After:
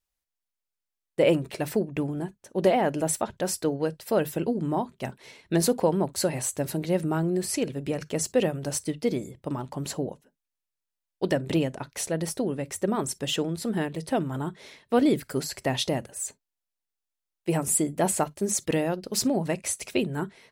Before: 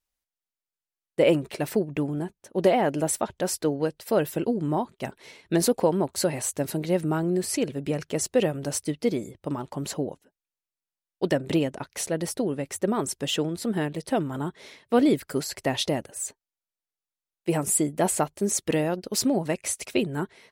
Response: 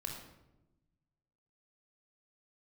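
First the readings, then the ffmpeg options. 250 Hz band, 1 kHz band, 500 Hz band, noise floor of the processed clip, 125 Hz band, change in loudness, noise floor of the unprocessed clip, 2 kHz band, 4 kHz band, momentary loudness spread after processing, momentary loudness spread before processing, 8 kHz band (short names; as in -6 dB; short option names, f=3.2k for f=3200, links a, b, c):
-1.0 dB, -0.5 dB, -1.0 dB, under -85 dBFS, 0.0 dB, -1.0 dB, under -85 dBFS, -1.0 dB, -1.0 dB, 10 LU, 10 LU, -0.5 dB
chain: -filter_complex "[0:a]asplit=2[a][b];[b]bass=f=250:g=11,treble=f=4k:g=5[c];[1:a]atrim=start_sample=2205,atrim=end_sample=4410,asetrate=66150,aresample=44100[d];[c][d]afir=irnorm=-1:irlink=0,volume=-15dB[e];[a][e]amix=inputs=2:normalize=0,volume=-1.5dB"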